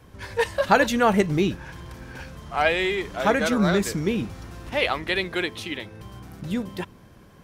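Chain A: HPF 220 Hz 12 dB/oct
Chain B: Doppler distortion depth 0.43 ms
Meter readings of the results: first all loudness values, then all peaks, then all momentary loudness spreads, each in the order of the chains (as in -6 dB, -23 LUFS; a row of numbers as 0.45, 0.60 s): -24.5, -24.0 LUFS; -3.5, -4.5 dBFS; 21, 20 LU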